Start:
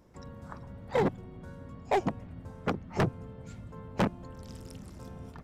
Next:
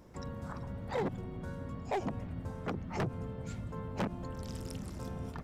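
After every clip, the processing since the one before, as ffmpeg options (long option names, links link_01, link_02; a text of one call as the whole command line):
ffmpeg -i in.wav -af "alimiter=level_in=8dB:limit=-24dB:level=0:latency=1:release=44,volume=-8dB,volume=4dB" out.wav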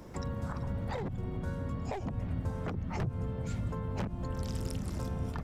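ffmpeg -i in.wav -filter_complex "[0:a]acrossover=split=120[link_01][link_02];[link_02]acompressor=threshold=-45dB:ratio=6[link_03];[link_01][link_03]amix=inputs=2:normalize=0,volume=8dB" out.wav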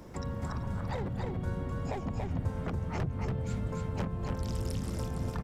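ffmpeg -i in.wav -af "aecho=1:1:284:0.668" out.wav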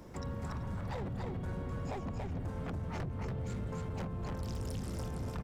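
ffmpeg -i in.wav -af "asoftclip=type=hard:threshold=-31.5dB,volume=-2.5dB" out.wav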